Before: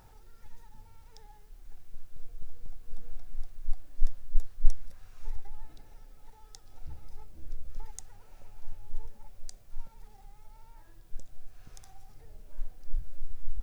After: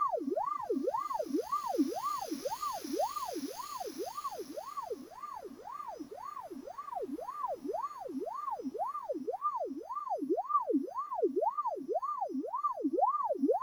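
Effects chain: sample sorter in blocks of 8 samples; reverse; compressor, threshold -32 dBFS, peak gain reduction 22 dB; reverse; Paulstretch 11×, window 0.50 s, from 7.72; on a send at -11 dB: reverb RT60 0.40 s, pre-delay 51 ms; on the sum: ring modulator with a swept carrier 730 Hz, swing 65%, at 1.9 Hz; gain +4 dB

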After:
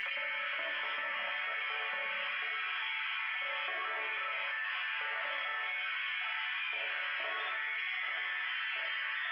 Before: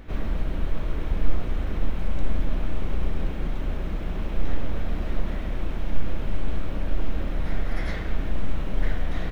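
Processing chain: sine-wave speech; differentiator; thin delay 91 ms, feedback 85%, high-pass 2900 Hz, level -8 dB; formant-preserving pitch shift +8 st; bell 2000 Hz +8 dB 0.91 oct; resonator bank D3 major, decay 0.37 s; reverb RT60 1.3 s, pre-delay 10 ms, DRR -4 dB; fast leveller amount 100%; gain -7.5 dB

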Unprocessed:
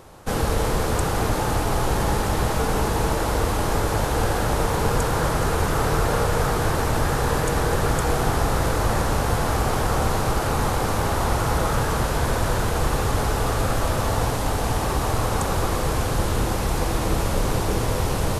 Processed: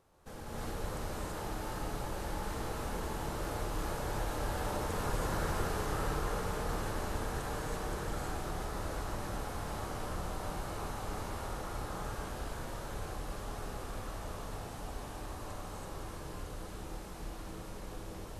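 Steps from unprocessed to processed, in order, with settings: Doppler pass-by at 5.37, 7 m/s, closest 3.3 m; compressor 4:1, threshold -41 dBFS, peak gain reduction 19 dB; non-linear reverb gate 0.36 s rising, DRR -7.5 dB; gain -2 dB

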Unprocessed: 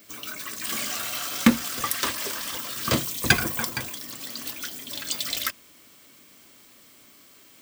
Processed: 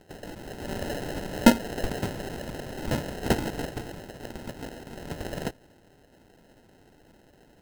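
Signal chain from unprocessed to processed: 0.85–1.99 bell 520 Hz +12.5 dB 1.6 oct; sample-and-hold 38×; gain -4 dB

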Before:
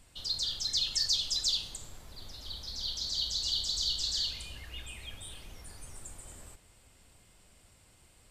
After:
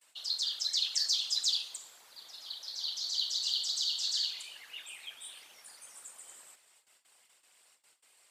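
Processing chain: gate with hold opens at -50 dBFS; Bessel high-pass 1000 Hz, order 2; whisperiser

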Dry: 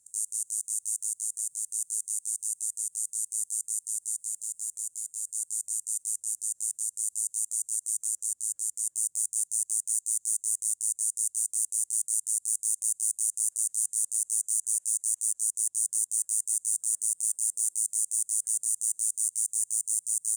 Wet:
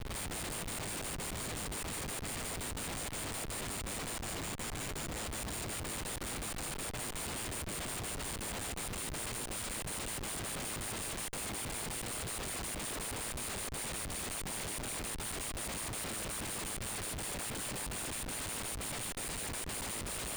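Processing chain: stepped spectrum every 50 ms; band noise 1900–5100 Hz -47 dBFS; Schmitt trigger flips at -38.5 dBFS; gain -7 dB

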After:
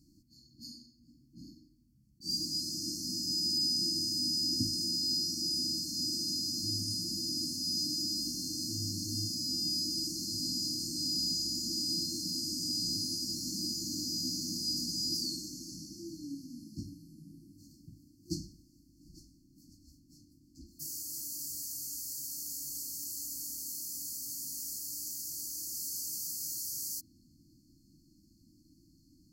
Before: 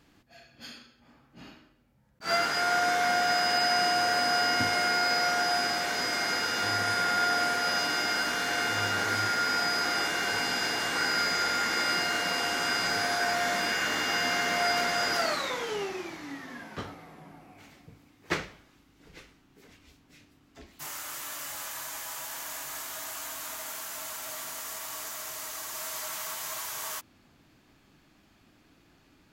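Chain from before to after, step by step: FFT band-reject 350–4200 Hz

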